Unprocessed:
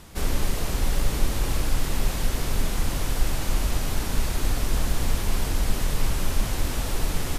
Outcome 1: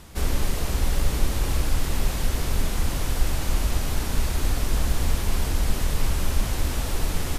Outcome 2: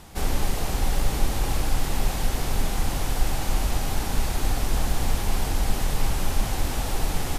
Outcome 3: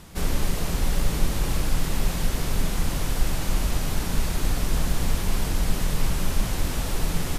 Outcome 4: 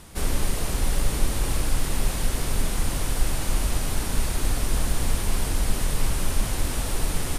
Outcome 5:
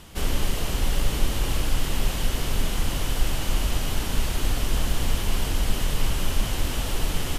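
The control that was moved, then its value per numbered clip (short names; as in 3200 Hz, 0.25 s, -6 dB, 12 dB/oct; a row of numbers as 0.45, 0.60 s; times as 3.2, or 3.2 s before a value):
bell, frequency: 68, 790, 170, 9300, 3000 Hz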